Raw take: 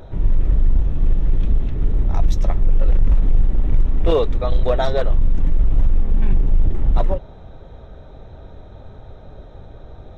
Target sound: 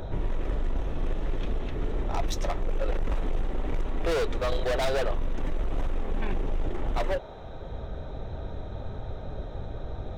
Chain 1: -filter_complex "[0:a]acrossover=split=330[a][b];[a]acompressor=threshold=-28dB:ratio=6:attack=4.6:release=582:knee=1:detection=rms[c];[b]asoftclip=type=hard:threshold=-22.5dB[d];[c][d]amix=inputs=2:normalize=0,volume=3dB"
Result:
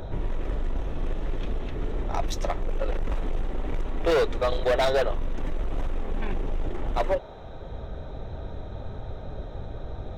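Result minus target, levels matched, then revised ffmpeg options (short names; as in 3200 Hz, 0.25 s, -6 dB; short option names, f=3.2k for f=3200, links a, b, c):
hard clip: distortion -5 dB
-filter_complex "[0:a]acrossover=split=330[a][b];[a]acompressor=threshold=-28dB:ratio=6:attack=4.6:release=582:knee=1:detection=rms[c];[b]asoftclip=type=hard:threshold=-29dB[d];[c][d]amix=inputs=2:normalize=0,volume=3dB"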